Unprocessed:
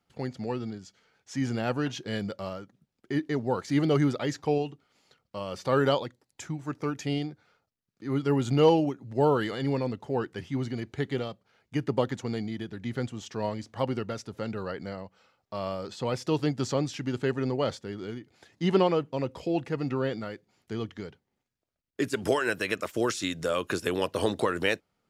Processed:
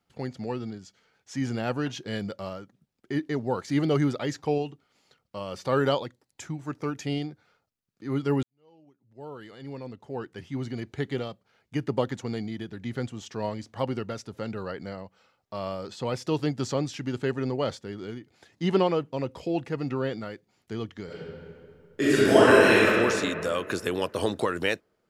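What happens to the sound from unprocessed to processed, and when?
0:08.43–0:10.82: fade in quadratic
0:21.05–0:22.84: thrown reverb, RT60 2.3 s, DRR −10.5 dB

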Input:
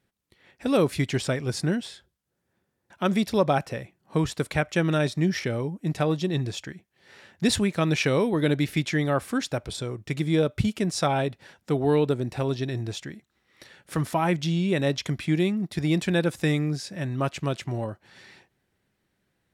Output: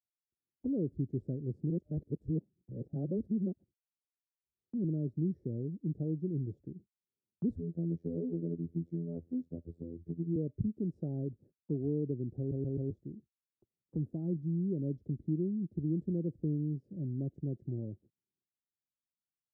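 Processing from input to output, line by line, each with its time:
0:01.70–0:04.84: reverse
0:07.56–0:10.36: phases set to zero 84.2 Hz
0:12.38: stutter in place 0.13 s, 4 plays
whole clip: inverse Chebyshev low-pass filter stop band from 1,000 Hz, stop band 50 dB; noise gate −52 dBFS, range −39 dB; multiband upward and downward compressor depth 40%; level −8 dB

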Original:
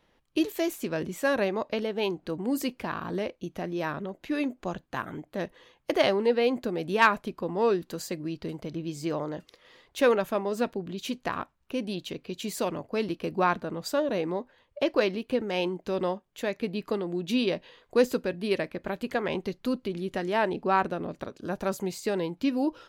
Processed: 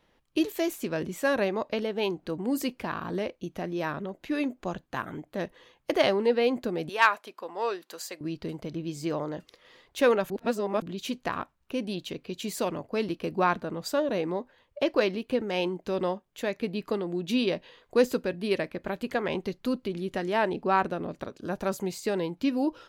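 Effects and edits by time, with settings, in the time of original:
0:06.89–0:08.21: high-pass filter 640 Hz
0:10.30–0:10.82: reverse

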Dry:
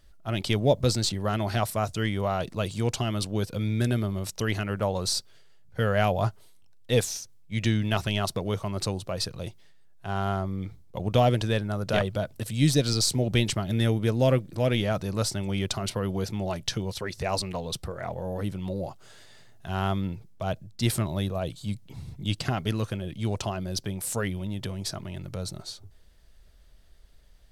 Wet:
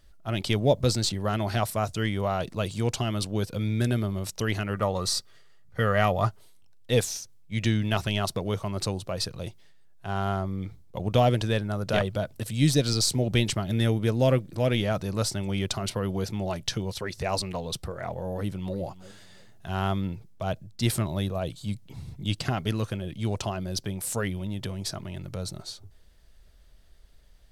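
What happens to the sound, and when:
0:04.73–0:06.26: hollow resonant body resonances 1,200/1,900 Hz, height 13 dB
0:18.32–0:18.77: delay throw 340 ms, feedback 30%, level −17 dB

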